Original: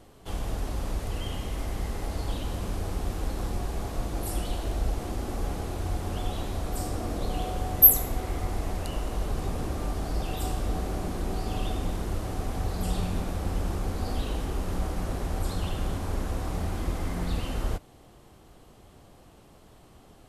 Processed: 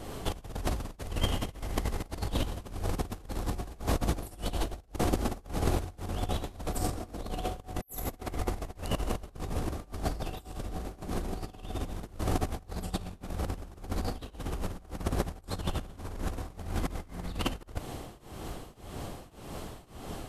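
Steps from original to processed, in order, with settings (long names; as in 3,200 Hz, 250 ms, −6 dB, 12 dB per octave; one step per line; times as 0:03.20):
compressor whose output falls as the input rises −35 dBFS, ratio −0.5
shaped tremolo triangle 1.8 Hz, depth 95%
level +7.5 dB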